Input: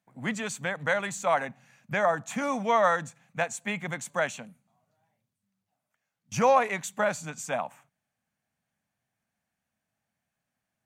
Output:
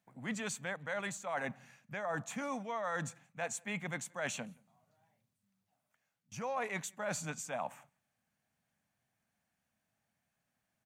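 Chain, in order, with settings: reverse; compressor 8:1, threshold -35 dBFS, peak gain reduction 18 dB; reverse; outdoor echo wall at 30 m, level -29 dB

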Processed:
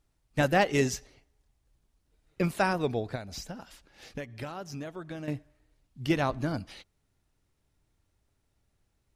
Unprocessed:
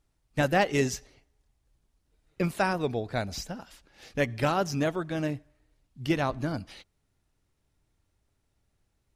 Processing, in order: 3.15–5.28 compressor 16:1, threshold -35 dBFS, peak gain reduction 15.5 dB

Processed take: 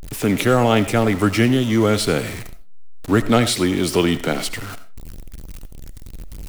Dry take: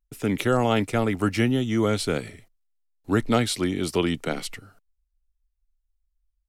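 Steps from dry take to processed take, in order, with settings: zero-crossing step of -32 dBFS; on a send: reverb RT60 0.30 s, pre-delay 45 ms, DRR 13 dB; on the sum: gain +5 dB

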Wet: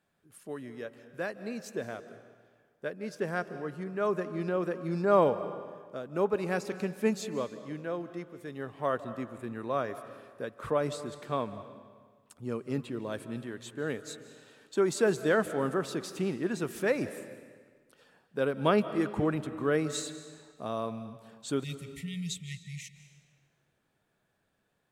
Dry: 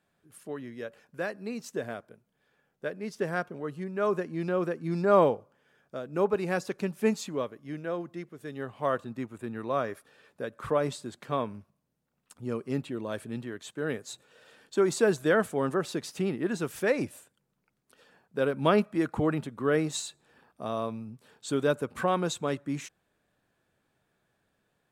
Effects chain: spectral delete 21.64–22.95, 200–1800 Hz; digital reverb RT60 1.6 s, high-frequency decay 0.9×, pre-delay 0.12 s, DRR 12.5 dB; gain -2 dB

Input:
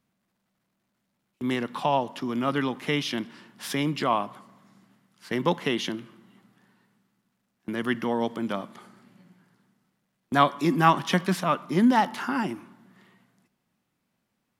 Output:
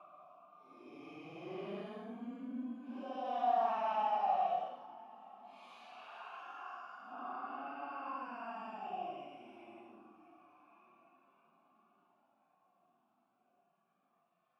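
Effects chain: Paulstretch 11×, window 0.05 s, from 11.63; vowel filter a; gain -4 dB

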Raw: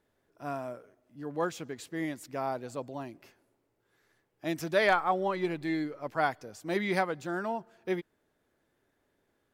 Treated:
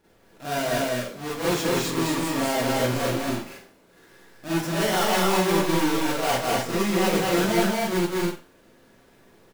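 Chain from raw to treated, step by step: half-waves squared off; reverse; compressor 6:1, threshold -35 dBFS, peak gain reduction 17 dB; reverse; loudspeakers at several distances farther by 70 m -3 dB, 84 m -4 dB; Schroeder reverb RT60 0.34 s, combs from 33 ms, DRR -8 dB; gain +3.5 dB

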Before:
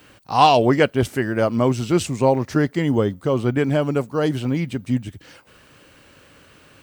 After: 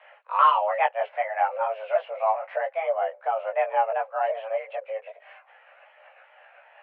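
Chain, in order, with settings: repeated pitch sweeps -4 st, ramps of 0.39 s; in parallel at +2 dB: compressor, threshold -29 dBFS, peak gain reduction 18.5 dB; on the sum: mistuned SSB +330 Hz 210–2300 Hz; chorus voices 2, 0.33 Hz, delay 18 ms, depth 3.4 ms; gain -3.5 dB

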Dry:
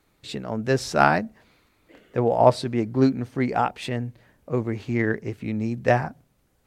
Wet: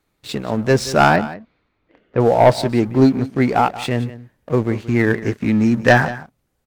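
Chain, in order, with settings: 5.18–6.05 fifteen-band EQ 250 Hz +6 dB, 1600 Hz +10 dB, 6300 Hz +6 dB; sample leveller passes 2; 1.16–2.2 air absorption 220 m; echo 0.178 s -16 dB

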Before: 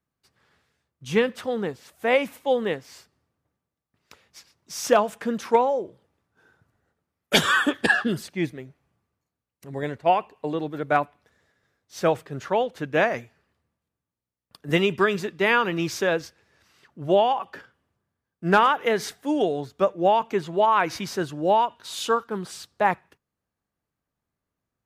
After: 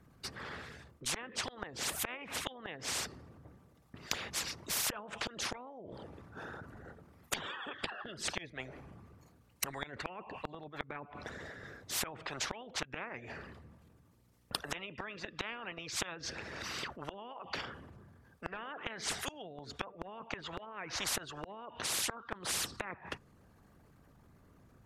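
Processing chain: formant sharpening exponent 1.5; treble ducked by the level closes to 1500 Hz, closed at -15.5 dBFS; flipped gate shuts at -20 dBFS, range -26 dB; spectral compressor 10:1; gain +4.5 dB

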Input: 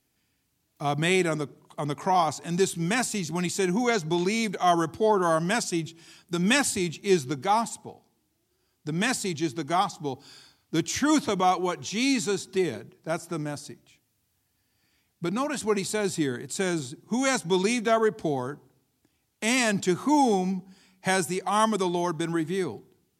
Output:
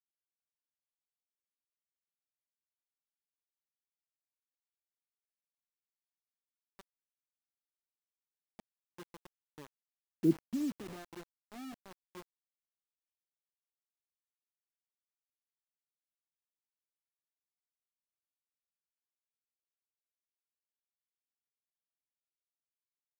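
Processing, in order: Doppler pass-by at 10.28, 16 m/s, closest 1.4 m; Butterworth band-pass 250 Hz, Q 1.1; bit-crush 8-bit

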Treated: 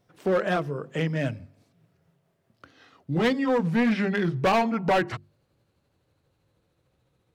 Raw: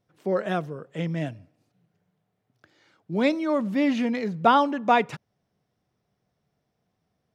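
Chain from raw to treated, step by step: gliding pitch shift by -6 st starting unshifted; in parallel at +3 dB: compressor 6:1, threshold -33 dBFS, peak gain reduction 18 dB; on the sum: notches 50/100/150/200/250/300/350 Hz; overloaded stage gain 18.5 dB; dynamic EQ 1900 Hz, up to +3 dB, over -38 dBFS, Q 0.83

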